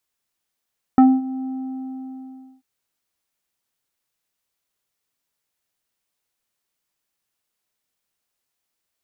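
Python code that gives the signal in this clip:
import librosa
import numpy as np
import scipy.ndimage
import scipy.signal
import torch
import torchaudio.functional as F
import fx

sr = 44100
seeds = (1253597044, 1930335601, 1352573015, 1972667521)

y = fx.sub_voice(sr, note=60, wave='square', cutoff_hz=630.0, q=1.1, env_oct=1.0, env_s=0.09, attack_ms=1.4, decay_s=0.23, sustain_db=-18.0, release_s=1.17, note_s=0.47, slope=24)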